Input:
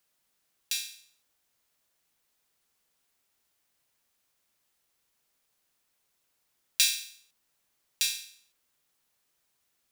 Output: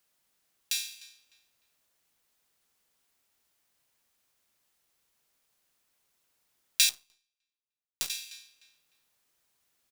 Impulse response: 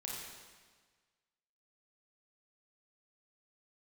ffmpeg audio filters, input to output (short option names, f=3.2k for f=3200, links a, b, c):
-filter_complex "[0:a]asplit=2[a][b];[b]adelay=302,lowpass=f=3.9k:p=1,volume=-17.5dB,asplit=2[c][d];[d]adelay=302,lowpass=f=3.9k:p=1,volume=0.3,asplit=2[e][f];[f]adelay=302,lowpass=f=3.9k:p=1,volume=0.3[g];[a][c][e][g]amix=inputs=4:normalize=0,asplit=2[h][i];[1:a]atrim=start_sample=2205,afade=t=out:st=0.38:d=0.01,atrim=end_sample=17199[j];[i][j]afir=irnorm=-1:irlink=0,volume=-16.5dB[k];[h][k]amix=inputs=2:normalize=0,asettb=1/sr,asplit=3[l][m][n];[l]atrim=end=6.894[o];[m]atrim=start=6.89:end=8.1,asetpts=PTS-STARTPTS,afade=t=in:d=0.004:c=qsin,afade=t=out:st=1.206:d=0.004:c=qsin,aeval=exprs='0.531*(cos(1*acos(clip(val(0)/0.531,-1,1)))-cos(1*PI/2))+0.106*(cos(2*acos(clip(val(0)/0.531,-1,1)))-cos(2*PI/2))+0.015*(cos(5*acos(clip(val(0)/0.531,-1,1)))-cos(5*PI/2))+0.0841*(cos(7*acos(clip(val(0)/0.531,-1,1)))-cos(7*PI/2))':c=same[p];[n]atrim=start=8.096[q];[o][p]acrossfade=d=0.004:c1=hsin:c2=qsin[r];[r][q]acrossfade=d=0.004:c1=qsin:c2=hsin"